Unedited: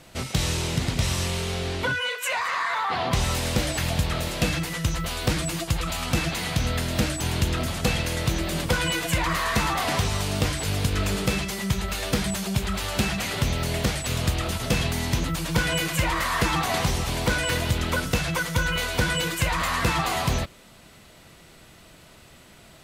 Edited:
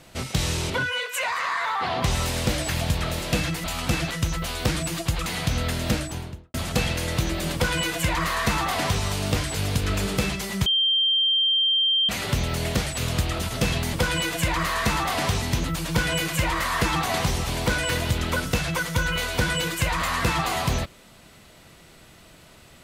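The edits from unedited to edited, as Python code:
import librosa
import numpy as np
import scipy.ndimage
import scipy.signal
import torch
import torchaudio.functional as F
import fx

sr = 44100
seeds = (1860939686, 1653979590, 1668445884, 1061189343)

y = fx.studio_fade_out(x, sr, start_s=6.96, length_s=0.67)
y = fx.edit(y, sr, fx.cut(start_s=0.7, length_s=1.09),
    fx.move(start_s=5.88, length_s=0.47, to_s=4.73),
    fx.duplicate(start_s=8.63, length_s=1.49, to_s=15.02),
    fx.bleep(start_s=11.75, length_s=1.43, hz=3160.0, db=-18.0), tone=tone)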